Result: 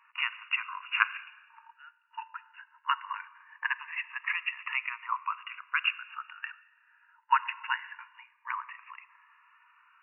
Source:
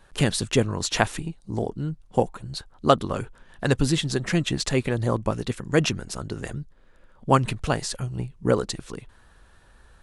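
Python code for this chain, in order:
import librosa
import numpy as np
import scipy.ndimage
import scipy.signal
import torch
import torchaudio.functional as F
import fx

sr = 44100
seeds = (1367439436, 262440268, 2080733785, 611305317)

y = fx.brickwall_bandpass(x, sr, low_hz=890.0, high_hz=2900.0)
y = fx.rev_schroeder(y, sr, rt60_s=1.3, comb_ms=31, drr_db=16.5)
y = fx.notch_cascade(y, sr, direction='rising', hz=0.21)
y = y * librosa.db_to_amplitude(4.0)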